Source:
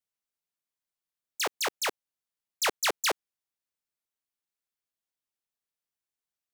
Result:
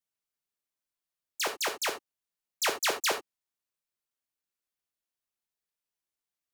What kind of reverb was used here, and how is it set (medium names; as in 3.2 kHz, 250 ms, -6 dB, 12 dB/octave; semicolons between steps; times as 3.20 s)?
gated-style reverb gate 100 ms flat, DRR 6 dB; trim -1.5 dB